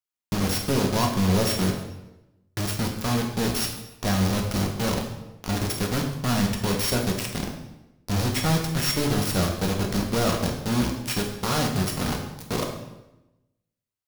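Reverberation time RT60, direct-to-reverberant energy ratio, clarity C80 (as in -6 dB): 0.95 s, 0.5 dB, 8.0 dB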